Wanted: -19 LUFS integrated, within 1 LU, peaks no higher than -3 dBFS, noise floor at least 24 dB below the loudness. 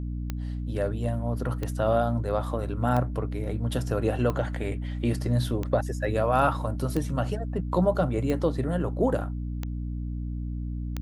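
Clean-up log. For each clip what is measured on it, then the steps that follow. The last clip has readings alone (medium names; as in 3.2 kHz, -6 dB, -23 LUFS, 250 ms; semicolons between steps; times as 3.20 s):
clicks found 9; hum 60 Hz; highest harmonic 300 Hz; hum level -29 dBFS; loudness -28.0 LUFS; peak level -9.5 dBFS; loudness target -19.0 LUFS
-> de-click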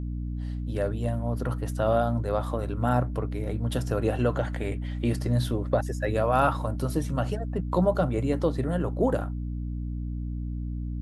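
clicks found 0; hum 60 Hz; highest harmonic 300 Hz; hum level -29 dBFS
-> de-hum 60 Hz, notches 5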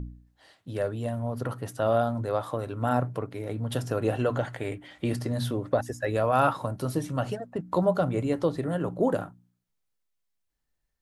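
hum not found; loudness -29.0 LUFS; peak level -10.0 dBFS; loudness target -19.0 LUFS
-> trim +10 dB; peak limiter -3 dBFS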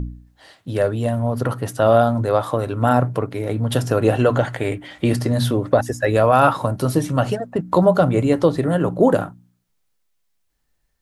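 loudness -19.0 LUFS; peak level -3.0 dBFS; noise floor -68 dBFS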